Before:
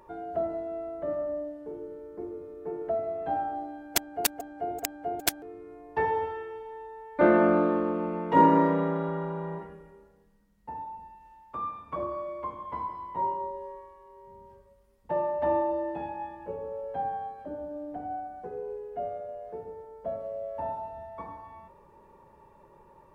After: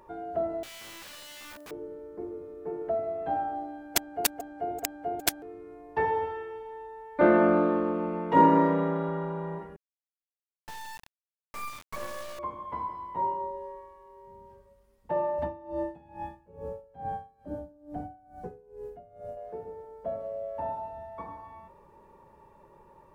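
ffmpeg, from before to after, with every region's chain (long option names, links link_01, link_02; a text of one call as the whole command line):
ffmpeg -i in.wav -filter_complex "[0:a]asettb=1/sr,asplit=3[link_01][link_02][link_03];[link_01]atrim=end=0.634[link_04];[link_02]atrim=start=0.63:end=1.71,asetpts=PTS-STARTPTS,afade=type=in:duration=0.004:curve=qsin,afade=type=out:start_time=1.076:duration=0.004:curve=qsin,aemphasis=mode=production:type=riaa,acompressor=threshold=-37dB:ratio=3:attack=3.2:release=140:knee=1:detection=peak,aeval=exprs='(mod(112*val(0)+1,2)-1)/112':channel_layout=same[link_05];[link_03]atrim=start=1.706[link_06];[link_04][link_05]acrossfade=duration=0.004:curve1=hsin:curve2=qsin[link_07];[link_07][link_06]acrossfade=duration=0.004:curve1=qsin:curve2=hsin,asettb=1/sr,asplit=3[link_08][link_09][link_10];[link_08]atrim=end=9.764[link_11];[link_09]atrim=start=9.76:end=12.39,asetpts=PTS-STARTPTS,afade=type=in:duration=0.004:curve=qsin,afade=type=out:start_time=2.626:duration=0.004:curve=qsin,equalizer=frequency=300:width_type=o:width=0.46:gain=-9.5,acrusher=bits=4:dc=4:mix=0:aa=0.000001[link_12];[link_10]atrim=start=12.386[link_13];[link_11][link_12]acrossfade=duration=0.004:curve1=hsin:curve2=qsin[link_14];[link_14][link_13]acrossfade=duration=0.004:curve1=qsin:curve2=hsin,asettb=1/sr,asplit=3[link_15][link_16][link_17];[link_15]atrim=end=15.384[link_18];[link_16]atrim=start=15.38:end=19.37,asetpts=PTS-STARTPTS,afade=type=in:duration=0.004:curve=qsin,afade=type=out:start_time=3.986:duration=0.004:curve=qsin,bass=frequency=250:gain=12,treble=frequency=4000:gain=9,aeval=exprs='val(0)*pow(10,-23*(0.5-0.5*cos(2*PI*2.3*n/s))/20)':channel_layout=same[link_19];[link_17]atrim=start=19.366[link_20];[link_18][link_19]acrossfade=duration=0.004:curve1=hsin:curve2=qsin[link_21];[link_21][link_20]acrossfade=duration=0.004:curve1=qsin:curve2=hsin" out.wav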